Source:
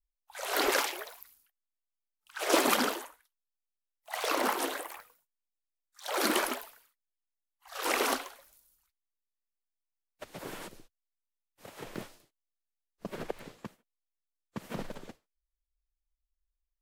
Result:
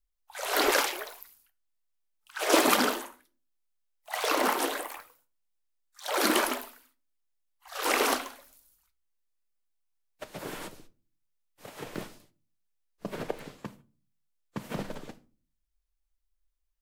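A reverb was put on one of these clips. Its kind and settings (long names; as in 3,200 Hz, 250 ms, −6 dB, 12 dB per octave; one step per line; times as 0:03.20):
rectangular room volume 240 cubic metres, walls furnished, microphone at 0.43 metres
level +3 dB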